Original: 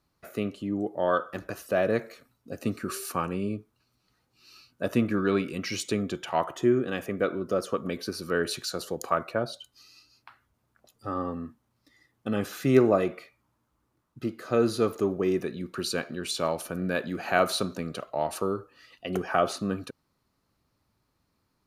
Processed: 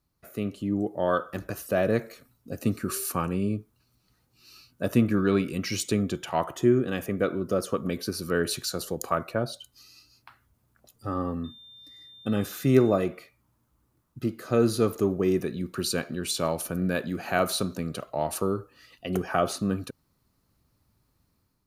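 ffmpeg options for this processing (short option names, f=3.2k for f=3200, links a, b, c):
-filter_complex "[0:a]asettb=1/sr,asplit=3[a][b][c];[a]atrim=end=11.444[d];[b]atrim=start=11.44:end=12.98,asetpts=PTS-STARTPTS,afade=t=in:d=0.004:c=qsin,afade=t=out:st=1.536:d=0.004:c=qsin,aeval=exprs='val(0)+0.00398*sin(2*PI*3600*n/s)':c=same[e];[c]atrim=start=12.976[f];[d][e]acrossfade=d=0.004:c1=hsin:c2=qsin[g];[g][f]acrossfade=d=0.004:c1=qsin:c2=hsin,highshelf=f=7.9k:g=11,dynaudnorm=f=180:g=5:m=6.5dB,lowshelf=f=220:g=9,volume=-7.5dB"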